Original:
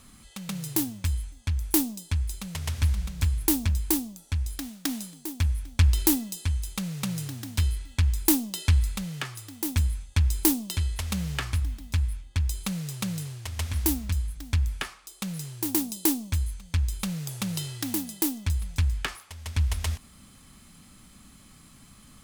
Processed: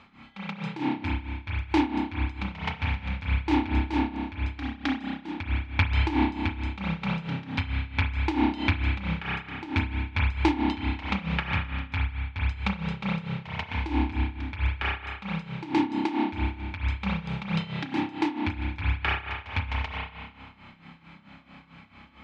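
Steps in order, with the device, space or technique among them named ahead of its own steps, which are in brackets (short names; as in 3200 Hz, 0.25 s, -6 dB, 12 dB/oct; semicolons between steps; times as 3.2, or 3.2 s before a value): combo amplifier with spring reverb and tremolo (spring tank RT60 1.7 s, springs 30 ms, chirp 50 ms, DRR -2.5 dB; tremolo 4.5 Hz, depth 79%; speaker cabinet 88–3700 Hz, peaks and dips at 120 Hz -7 dB, 860 Hz +10 dB, 1400 Hz +4 dB, 2300 Hz +9 dB); gain +2 dB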